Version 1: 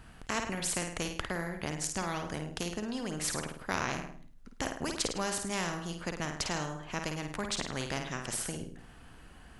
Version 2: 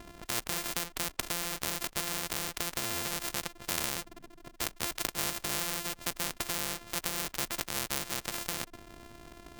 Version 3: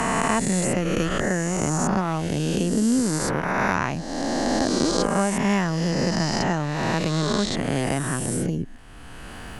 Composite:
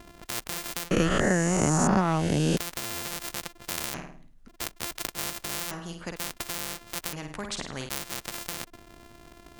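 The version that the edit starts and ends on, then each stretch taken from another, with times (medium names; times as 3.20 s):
2
0.91–2.57 s: from 3
3.94–4.48 s: from 1
5.71–6.16 s: from 1
7.13–7.89 s: from 1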